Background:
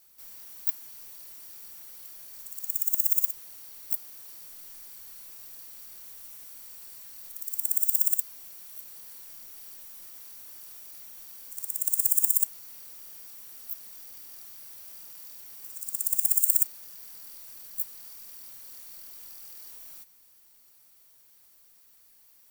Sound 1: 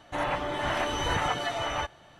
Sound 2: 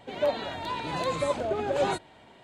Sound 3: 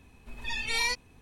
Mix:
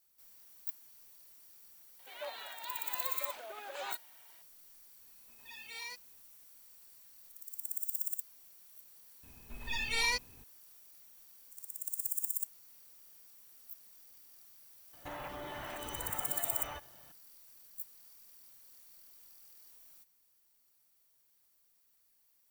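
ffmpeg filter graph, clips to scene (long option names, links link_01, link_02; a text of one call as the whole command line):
ffmpeg -i bed.wav -i cue0.wav -i cue1.wav -i cue2.wav -filter_complex "[3:a]asplit=2[link_01][link_02];[0:a]volume=-12.5dB[link_03];[2:a]highpass=1100[link_04];[link_01]highpass=frequency=440:poles=1[link_05];[1:a]acompressor=threshold=-31dB:ratio=6:attack=3.2:release=140:knee=1:detection=peak[link_06];[link_04]atrim=end=2.43,asetpts=PTS-STARTPTS,volume=-7.5dB,afade=type=in:duration=0.004:curve=hsin,afade=type=out:start_time=2.426:duration=0.004:curve=hsin,adelay=1990[link_07];[link_05]atrim=end=1.21,asetpts=PTS-STARTPTS,volume=-16dB,afade=type=in:duration=0.004:curve=hsin,afade=type=out:start_time=1.206:duration=0.004:curve=hsin,adelay=220941S[link_08];[link_02]atrim=end=1.21,asetpts=PTS-STARTPTS,volume=-3dB,afade=type=in:duration=0.004:curve=hsin,afade=type=out:start_time=1.206:duration=0.004:curve=hsin,adelay=9230[link_09];[link_06]atrim=end=2.19,asetpts=PTS-STARTPTS,volume=-8.5dB,afade=type=in:duration=0.004:curve=hsin,afade=type=out:start_time=2.186:duration=0.004:curve=hsin,adelay=14930[link_10];[link_03][link_07][link_08][link_09][link_10]amix=inputs=5:normalize=0" out.wav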